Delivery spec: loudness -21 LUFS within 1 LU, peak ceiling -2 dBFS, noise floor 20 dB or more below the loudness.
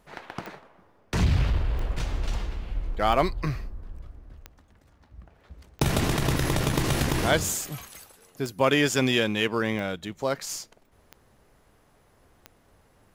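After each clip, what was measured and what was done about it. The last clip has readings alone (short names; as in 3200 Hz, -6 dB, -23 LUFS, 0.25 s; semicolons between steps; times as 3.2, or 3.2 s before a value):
clicks 10; loudness -26.5 LUFS; peak -9.0 dBFS; loudness target -21.0 LUFS
-> de-click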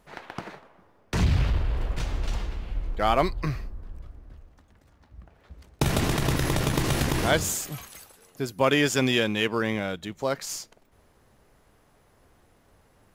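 clicks 0; loudness -26.5 LUFS; peak -9.0 dBFS; loudness target -21.0 LUFS
-> gain +5.5 dB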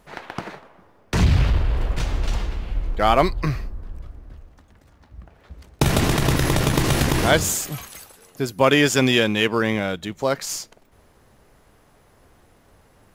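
loudness -21.0 LUFS; peak -3.5 dBFS; noise floor -56 dBFS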